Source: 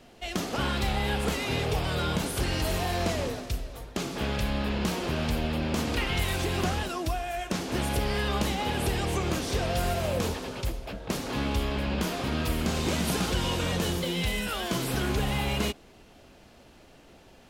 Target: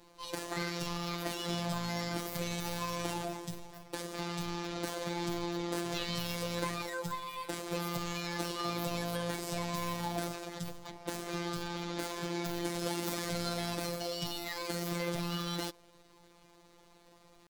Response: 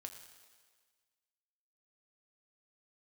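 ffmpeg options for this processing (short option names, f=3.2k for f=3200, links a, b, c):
-af "asetrate=62367,aresample=44100,atempo=0.707107,afftfilt=real='hypot(re,im)*cos(PI*b)':imag='0':win_size=1024:overlap=0.75,volume=-3.5dB"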